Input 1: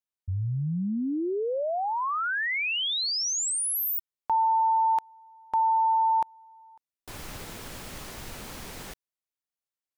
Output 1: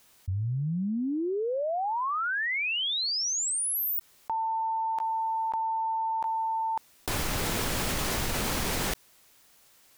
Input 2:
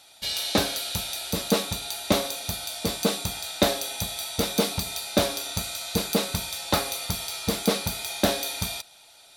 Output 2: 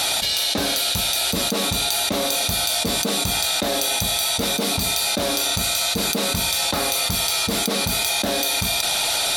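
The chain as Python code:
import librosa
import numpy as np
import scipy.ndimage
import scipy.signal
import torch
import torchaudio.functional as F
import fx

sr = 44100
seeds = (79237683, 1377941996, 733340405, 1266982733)

y = fx.dynamic_eq(x, sr, hz=250.0, q=3.5, threshold_db=-41.0, ratio=4.0, max_db=5)
y = fx.env_flatten(y, sr, amount_pct=100)
y = y * 10.0 ** (-6.5 / 20.0)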